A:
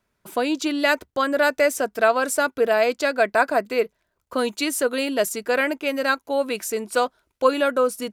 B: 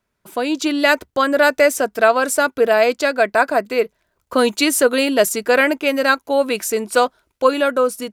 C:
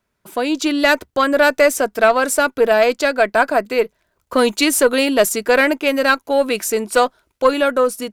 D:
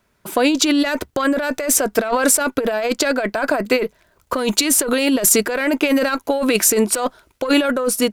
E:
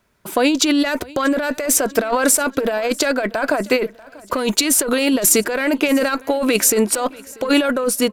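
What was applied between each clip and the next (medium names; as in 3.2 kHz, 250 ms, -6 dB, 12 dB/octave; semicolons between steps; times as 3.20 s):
level rider; trim -1 dB
single-diode clipper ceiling -2 dBFS; trim +1.5 dB
compressor with a negative ratio -21 dBFS, ratio -1; trim +3.5 dB
feedback delay 639 ms, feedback 48%, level -22.5 dB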